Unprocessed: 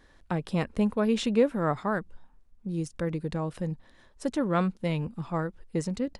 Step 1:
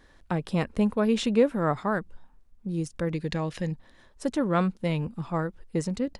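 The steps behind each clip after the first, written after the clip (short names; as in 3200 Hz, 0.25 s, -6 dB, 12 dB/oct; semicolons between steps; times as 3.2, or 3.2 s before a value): spectral gain 3.14–3.72, 1600–7300 Hz +8 dB; gain +1.5 dB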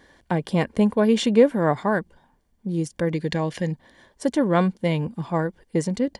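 notch comb 1300 Hz; gain +6 dB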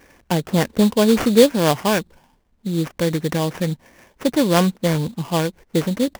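sample-rate reducer 4000 Hz, jitter 20%; gain +3.5 dB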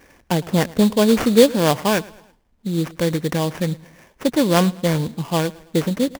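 feedback echo 0.109 s, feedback 43%, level -21.5 dB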